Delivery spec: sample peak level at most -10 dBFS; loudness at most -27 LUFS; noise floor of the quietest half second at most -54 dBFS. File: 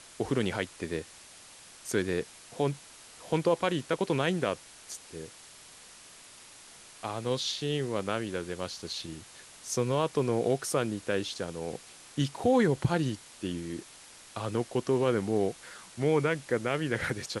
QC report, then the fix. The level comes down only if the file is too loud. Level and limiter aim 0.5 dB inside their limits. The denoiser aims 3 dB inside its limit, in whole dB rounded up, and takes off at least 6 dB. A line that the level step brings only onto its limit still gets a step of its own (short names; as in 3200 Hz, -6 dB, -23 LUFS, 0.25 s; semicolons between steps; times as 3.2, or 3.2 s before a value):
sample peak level -13.0 dBFS: OK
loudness -31.0 LUFS: OK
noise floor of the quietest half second -52 dBFS: fail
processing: denoiser 6 dB, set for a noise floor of -52 dBFS